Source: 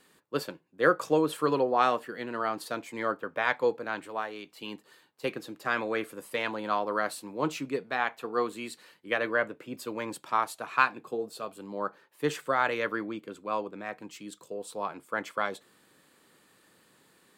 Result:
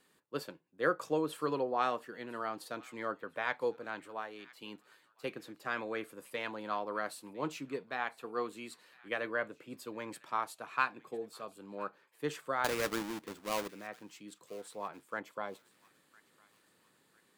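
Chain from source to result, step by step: 12.64–13.68 s: square wave that keeps the level; 15.20–15.70 s: time-frequency box 1.1–11 kHz -6 dB; feedback echo behind a high-pass 1005 ms, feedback 42%, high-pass 1.6 kHz, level -20 dB; trim -7.5 dB

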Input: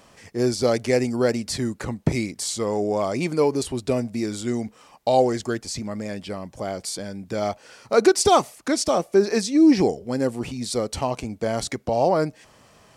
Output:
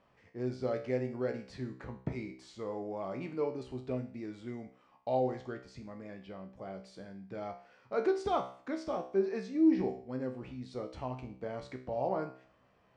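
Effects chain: low-pass 2.5 kHz 12 dB/octave; feedback comb 64 Hz, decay 0.48 s, harmonics all, mix 80%; trim -6.5 dB

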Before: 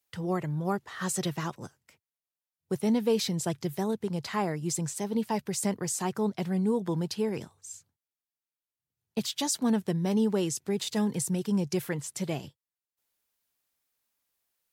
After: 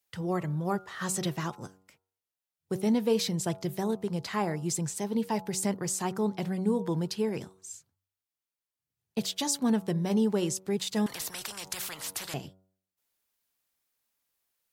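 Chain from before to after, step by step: de-hum 94.37 Hz, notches 15; 11.06–12.34 s: spectrum-flattening compressor 10:1

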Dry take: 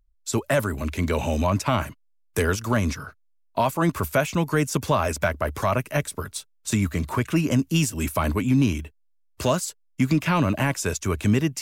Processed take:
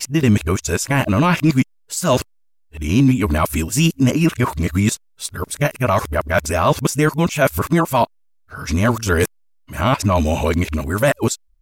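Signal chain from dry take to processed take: reverse the whole clip; trim +6 dB

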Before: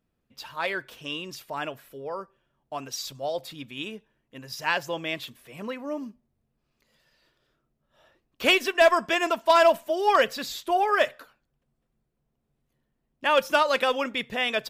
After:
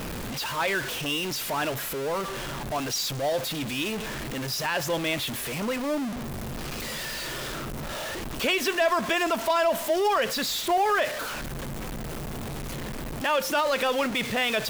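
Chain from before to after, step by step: jump at every zero crossing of -27.5 dBFS; peak limiter -16.5 dBFS, peak gain reduction 6.5 dB

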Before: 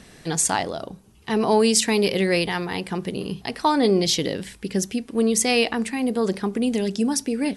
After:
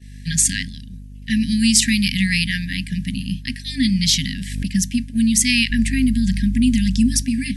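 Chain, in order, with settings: FFT band-reject 270–1600 Hz; hum 50 Hz, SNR 10 dB; 5.70–7.22 s: bass shelf 92 Hz +11.5 dB; in parallel at -2.5 dB: compression, threshold -29 dBFS, peak gain reduction 13.5 dB; on the sum: expander -23 dBFS; 4.13–4.66 s: swell ahead of each attack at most 51 dB/s; trim +3.5 dB

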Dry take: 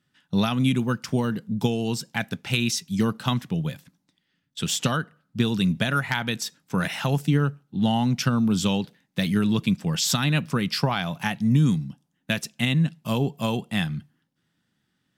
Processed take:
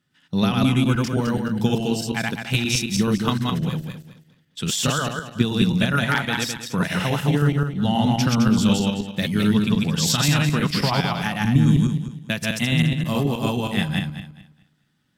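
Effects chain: backward echo that repeats 106 ms, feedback 50%, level 0 dB

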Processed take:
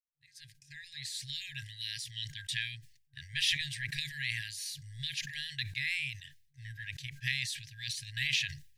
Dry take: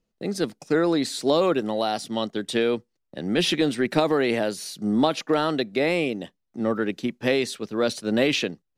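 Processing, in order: fade-in on the opening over 1.73 s; FFT band-reject 150–1600 Hz; decay stretcher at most 92 dB/s; trim -4.5 dB

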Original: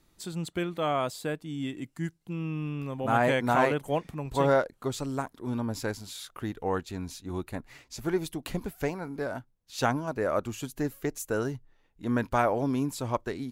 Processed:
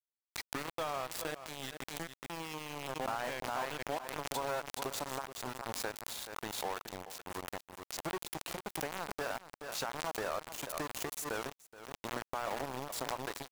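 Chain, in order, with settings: tape start-up on the opening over 0.73 s; compression 12:1, threshold -31 dBFS, peak gain reduction 13.5 dB; bass shelf 370 Hz -10.5 dB; de-hum 118.6 Hz, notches 22; on a send at -19 dB: reverberation RT60 1.7 s, pre-delay 3 ms; on the sum: small samples zeroed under -37.5 dBFS; peak limiter -30 dBFS, peak gain reduction 10.5 dB; peaking EQ 840 Hz +4.5 dB 1.3 oct; delay 425 ms -21 dB; swell ahead of each attack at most 48 dB/s; trim +1.5 dB

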